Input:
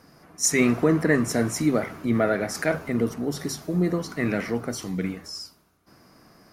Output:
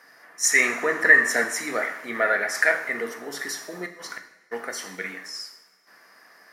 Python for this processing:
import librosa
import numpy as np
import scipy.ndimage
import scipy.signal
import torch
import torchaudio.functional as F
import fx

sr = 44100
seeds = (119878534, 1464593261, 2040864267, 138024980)

y = scipy.signal.sosfilt(scipy.signal.butter(2, 600.0, 'highpass', fs=sr, output='sos'), x)
y = fx.peak_eq(y, sr, hz=1800.0, db=13.5, octaves=0.44)
y = fx.gate_flip(y, sr, shuts_db=-21.0, range_db=-38, at=(3.85, 4.51), fade=0.02)
y = fx.rev_double_slope(y, sr, seeds[0], early_s=0.65, late_s=2.0, knee_db=-18, drr_db=5.5)
y = fx.band_squash(y, sr, depth_pct=40, at=(1.04, 1.44))